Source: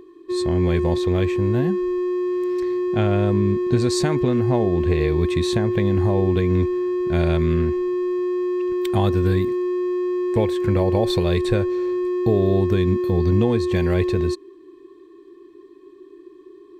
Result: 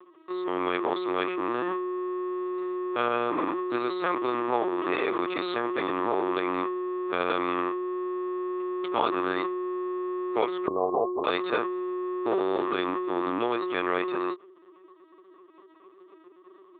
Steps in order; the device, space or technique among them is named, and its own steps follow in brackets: 10.67–11.25 steep low-pass 1100 Hz 96 dB/oct; talking toy (LPC vocoder at 8 kHz pitch kept; HPF 590 Hz 12 dB/oct; bell 1200 Hz +12 dB 0.34 oct)

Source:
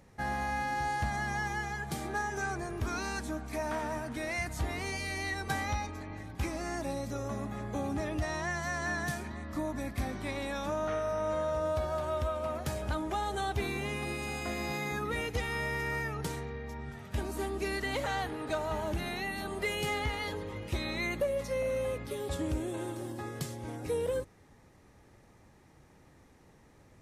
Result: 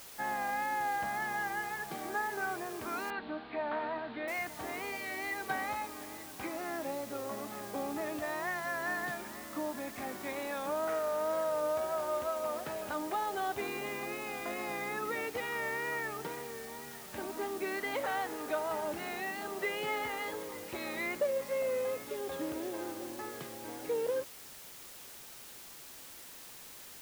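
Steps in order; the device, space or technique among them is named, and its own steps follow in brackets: wax cylinder (BPF 320–2500 Hz; wow and flutter; white noise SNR 13 dB); 3.1–4.28 steep low-pass 4300 Hz 72 dB/oct

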